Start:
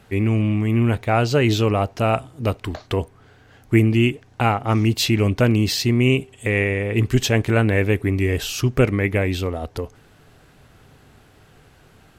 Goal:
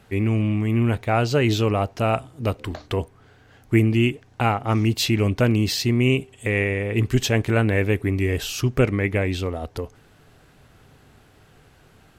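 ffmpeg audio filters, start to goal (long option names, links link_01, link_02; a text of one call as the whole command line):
ffmpeg -i in.wav -filter_complex "[0:a]asplit=3[link_01][link_02][link_03];[link_01]afade=type=out:start_time=2.58:duration=0.02[link_04];[link_02]bandreject=frequency=73.86:width_type=h:width=4,bandreject=frequency=147.72:width_type=h:width=4,bandreject=frequency=221.58:width_type=h:width=4,bandreject=frequency=295.44:width_type=h:width=4,bandreject=frequency=369.3:width_type=h:width=4,bandreject=frequency=443.16:width_type=h:width=4,bandreject=frequency=517.02:width_type=h:width=4,afade=type=in:start_time=2.58:duration=0.02,afade=type=out:start_time=3.01:duration=0.02[link_05];[link_03]afade=type=in:start_time=3.01:duration=0.02[link_06];[link_04][link_05][link_06]amix=inputs=3:normalize=0,asettb=1/sr,asplit=3[link_07][link_08][link_09];[link_07]atrim=end=8.794[link_10];[link_08]atrim=start=8.79:end=9.47,asetpts=PTS-STARTPTS,afade=type=in:duration=0.004:curve=qsin,afade=type=out:start_time=0.676:duration=0.004:curve=qsin,lowpass=11000[link_11];[link_09]atrim=start=9.466[link_12];[link_10][link_11]acrossfade=duration=0.004:curve1=hsin:curve2=qsin[link_13];[link_13][link_12]acrossfade=duration=0.004:curve1=qsin:curve2=hsin,volume=-2dB" out.wav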